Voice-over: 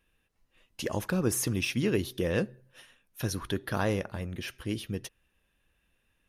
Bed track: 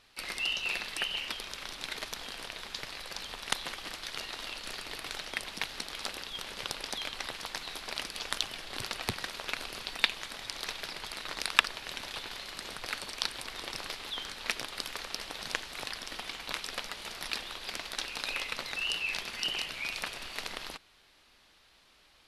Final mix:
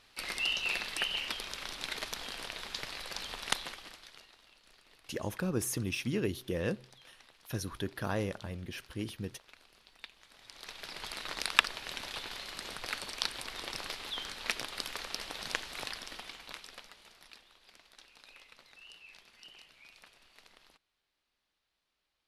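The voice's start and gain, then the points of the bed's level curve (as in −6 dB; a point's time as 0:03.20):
4.30 s, −5.0 dB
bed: 0:03.52 0 dB
0:04.42 −22 dB
0:10.12 −22 dB
0:11.04 −1 dB
0:15.85 −1 dB
0:17.46 −21 dB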